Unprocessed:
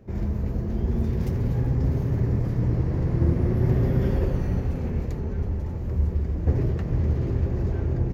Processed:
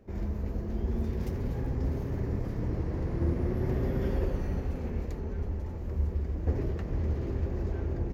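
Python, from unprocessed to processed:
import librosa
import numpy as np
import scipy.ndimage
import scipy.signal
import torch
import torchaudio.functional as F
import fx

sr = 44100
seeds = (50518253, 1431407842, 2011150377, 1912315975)

y = fx.peak_eq(x, sr, hz=130.0, db=-8.5, octaves=0.93)
y = y * 10.0 ** (-4.0 / 20.0)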